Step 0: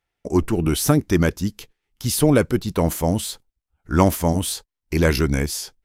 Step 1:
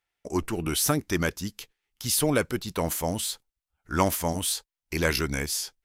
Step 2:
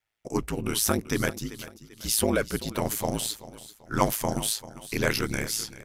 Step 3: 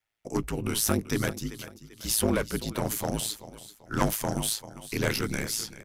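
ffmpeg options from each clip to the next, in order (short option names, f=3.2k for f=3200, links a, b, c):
-af "tiltshelf=f=660:g=-5,volume=-6dB"
-af "aecho=1:1:389|778|1167:0.158|0.0571|0.0205,aeval=exprs='val(0)*sin(2*PI*55*n/s)':c=same,volume=2.5dB"
-filter_complex "[0:a]acrossover=split=340|6800[a][b][c];[a]asplit=2[d][e];[e]adelay=20,volume=-6dB[f];[d][f]amix=inputs=2:normalize=0[g];[b]aeval=exprs='clip(val(0),-1,0.0422)':c=same[h];[g][h][c]amix=inputs=3:normalize=0,volume=-1dB"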